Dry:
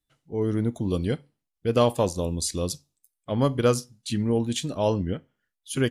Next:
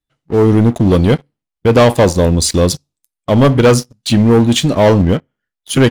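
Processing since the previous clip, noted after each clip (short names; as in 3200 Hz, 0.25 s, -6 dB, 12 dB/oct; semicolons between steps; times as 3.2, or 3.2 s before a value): high shelf 5800 Hz -9 dB; sample leveller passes 3; gain +7 dB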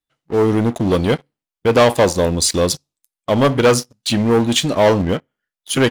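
low shelf 260 Hz -9.5 dB; gain -1 dB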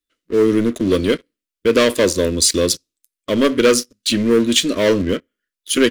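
fixed phaser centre 330 Hz, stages 4; gain +2.5 dB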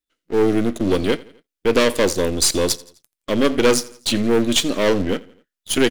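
half-wave gain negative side -7 dB; feedback echo 85 ms, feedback 49%, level -21.5 dB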